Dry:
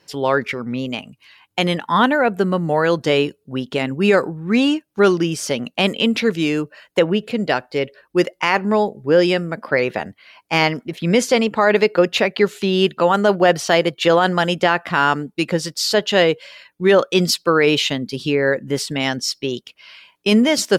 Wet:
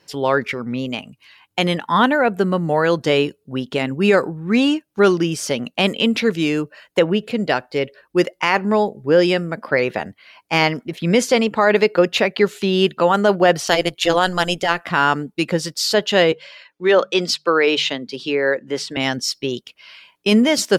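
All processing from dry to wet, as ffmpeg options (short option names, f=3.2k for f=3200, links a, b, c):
-filter_complex "[0:a]asettb=1/sr,asplit=3[a][b][c];[a]atrim=end=13.674[d];[b]atrim=start=13.67:end=14.85,asetpts=PTS-STARTPTS,afade=t=in:d=0.004:c=qsin,afade=t=out:st=1.176:d=0.004:c=qsin,equalizer=f=9.5k:w=0.35:g=9.5,tremolo=f=180:d=0.788[e];[c]atrim=start=14.846[f];[d][e]acrossfade=d=0.004:c1=hsin:c2=qsin[g];[g][f]acrossfade=d=0.004:c1=qsin:c2=hsin,asettb=1/sr,asplit=3[h][i][j];[h]atrim=end=16.324[k];[i]atrim=start=16.32:end=18.97,asetpts=PTS-STARTPTS,afade=t=in:d=0.004:c=qsin,afade=t=out:st=2.646:d=0.004:c=qsin,acrossover=split=280 6800:gain=0.224 1 0.2[l][m][n];[l][m][n]amix=inputs=3:normalize=0,bandreject=f=50:t=h:w=6,bandreject=f=100:t=h:w=6,bandreject=f=150:t=h:w=6,bandreject=f=200:t=h:w=6[o];[j]atrim=start=18.966[p];[k][o]acrossfade=d=0.004:c1=hsin:c2=qsin[q];[q][p]acrossfade=d=0.004:c1=qsin:c2=hsin"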